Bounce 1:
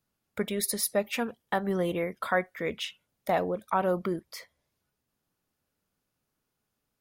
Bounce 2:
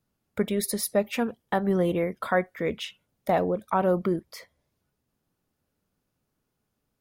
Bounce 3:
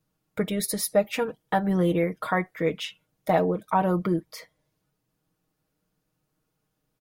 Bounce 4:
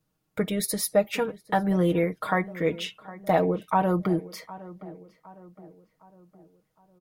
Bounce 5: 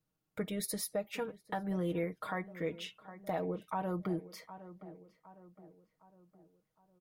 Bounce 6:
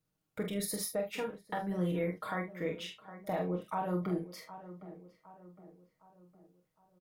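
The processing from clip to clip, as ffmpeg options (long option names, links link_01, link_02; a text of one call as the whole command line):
ffmpeg -i in.wav -af "tiltshelf=frequency=750:gain=3.5,volume=2.5dB" out.wav
ffmpeg -i in.wav -af "aecho=1:1:6.4:0.67" out.wav
ffmpeg -i in.wav -filter_complex "[0:a]asplit=2[link_01][link_02];[link_02]adelay=761,lowpass=frequency=1800:poles=1,volume=-17.5dB,asplit=2[link_03][link_04];[link_04]adelay=761,lowpass=frequency=1800:poles=1,volume=0.48,asplit=2[link_05][link_06];[link_06]adelay=761,lowpass=frequency=1800:poles=1,volume=0.48,asplit=2[link_07][link_08];[link_08]adelay=761,lowpass=frequency=1800:poles=1,volume=0.48[link_09];[link_01][link_03][link_05][link_07][link_09]amix=inputs=5:normalize=0" out.wav
ffmpeg -i in.wav -af "alimiter=limit=-16.5dB:level=0:latency=1:release=321,volume=-9dB" out.wav
ffmpeg -i in.wav -af "aecho=1:1:28|45|75:0.355|0.531|0.188" out.wav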